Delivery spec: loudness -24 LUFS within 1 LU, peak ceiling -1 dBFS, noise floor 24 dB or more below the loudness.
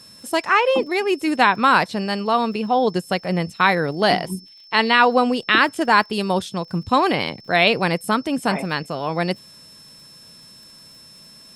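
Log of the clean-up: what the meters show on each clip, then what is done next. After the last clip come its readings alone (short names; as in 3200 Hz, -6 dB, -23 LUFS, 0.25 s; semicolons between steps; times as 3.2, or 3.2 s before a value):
ticks 29/s; steady tone 5300 Hz; tone level -44 dBFS; loudness -19.5 LUFS; peak -1.0 dBFS; loudness target -24.0 LUFS
-> de-click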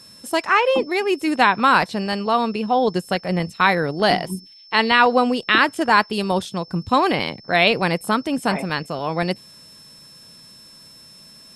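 ticks 0/s; steady tone 5300 Hz; tone level -44 dBFS
-> notch 5300 Hz, Q 30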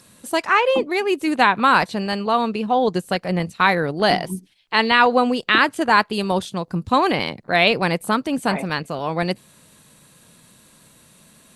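steady tone none; loudness -19.5 LUFS; peak -1.0 dBFS; loudness target -24.0 LUFS
-> gain -4.5 dB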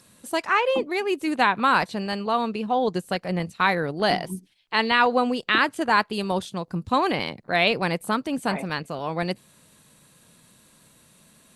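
loudness -24.0 LUFS; peak -5.5 dBFS; noise floor -57 dBFS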